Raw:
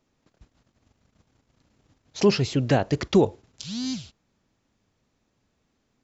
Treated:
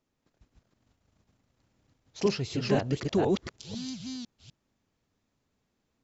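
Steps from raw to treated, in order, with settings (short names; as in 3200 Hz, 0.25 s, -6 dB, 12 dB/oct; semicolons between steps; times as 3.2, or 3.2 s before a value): reverse delay 0.25 s, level -0.5 dB; gain -8.5 dB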